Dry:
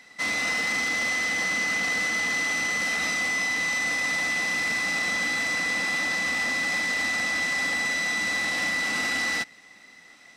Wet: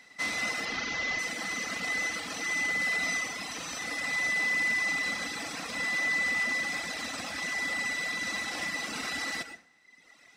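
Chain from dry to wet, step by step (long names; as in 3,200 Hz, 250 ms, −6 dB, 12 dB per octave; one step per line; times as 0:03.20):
0:00.65–0:01.19: linear delta modulator 32 kbit/s, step −28 dBFS
dense smooth reverb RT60 0.62 s, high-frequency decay 0.65×, pre-delay 85 ms, DRR 3.5 dB
reverb reduction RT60 1.2 s
level −3.5 dB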